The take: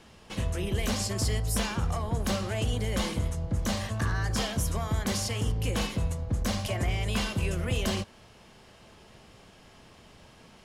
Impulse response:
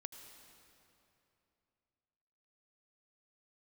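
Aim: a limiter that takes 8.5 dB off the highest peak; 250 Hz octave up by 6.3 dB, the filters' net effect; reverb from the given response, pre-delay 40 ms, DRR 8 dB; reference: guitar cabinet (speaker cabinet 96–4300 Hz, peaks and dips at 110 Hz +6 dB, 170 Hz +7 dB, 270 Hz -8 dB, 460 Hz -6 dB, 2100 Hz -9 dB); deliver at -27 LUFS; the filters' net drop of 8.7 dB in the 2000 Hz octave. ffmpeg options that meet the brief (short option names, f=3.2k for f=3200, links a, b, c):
-filter_complex "[0:a]equalizer=f=250:t=o:g=8,equalizer=f=2k:t=o:g=-8,alimiter=limit=-21.5dB:level=0:latency=1,asplit=2[a][b];[1:a]atrim=start_sample=2205,adelay=40[c];[b][c]afir=irnorm=-1:irlink=0,volume=-3.5dB[d];[a][d]amix=inputs=2:normalize=0,highpass=96,equalizer=f=110:t=q:w=4:g=6,equalizer=f=170:t=q:w=4:g=7,equalizer=f=270:t=q:w=4:g=-8,equalizer=f=460:t=q:w=4:g=-6,equalizer=f=2.1k:t=q:w=4:g=-9,lowpass=f=4.3k:w=0.5412,lowpass=f=4.3k:w=1.3066,volume=4dB"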